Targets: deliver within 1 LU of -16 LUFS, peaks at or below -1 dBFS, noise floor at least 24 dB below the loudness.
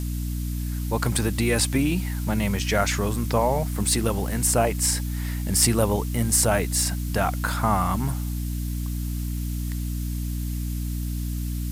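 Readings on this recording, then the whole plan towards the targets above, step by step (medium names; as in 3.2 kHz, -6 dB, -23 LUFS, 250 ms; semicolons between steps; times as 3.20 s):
hum 60 Hz; highest harmonic 300 Hz; hum level -25 dBFS; noise floor -28 dBFS; noise floor target -49 dBFS; loudness -24.5 LUFS; peak level -5.5 dBFS; loudness target -16.0 LUFS
-> de-hum 60 Hz, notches 5; noise print and reduce 21 dB; trim +8.5 dB; peak limiter -1 dBFS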